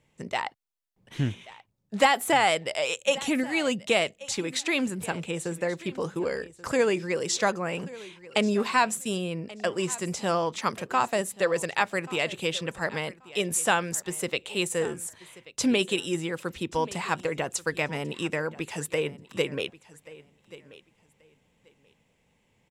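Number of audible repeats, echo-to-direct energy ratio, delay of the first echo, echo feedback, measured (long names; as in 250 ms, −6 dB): 2, −19.0 dB, 1,133 ms, 19%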